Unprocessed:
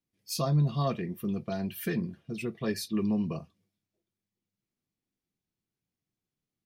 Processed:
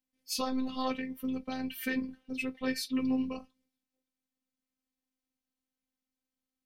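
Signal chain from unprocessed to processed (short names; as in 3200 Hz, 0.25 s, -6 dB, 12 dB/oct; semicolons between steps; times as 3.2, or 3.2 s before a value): dynamic EQ 2400 Hz, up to +7 dB, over -51 dBFS, Q 0.76; robotiser 259 Hz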